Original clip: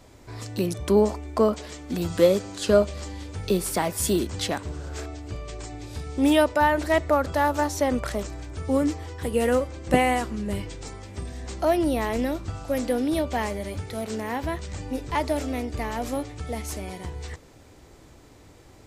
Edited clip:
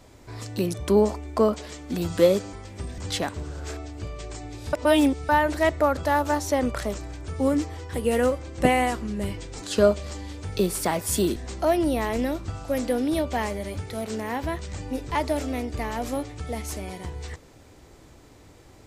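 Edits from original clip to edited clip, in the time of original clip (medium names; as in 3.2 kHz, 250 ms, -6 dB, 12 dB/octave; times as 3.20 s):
2.53–4.27 s: swap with 10.91–11.36 s
6.02–6.58 s: reverse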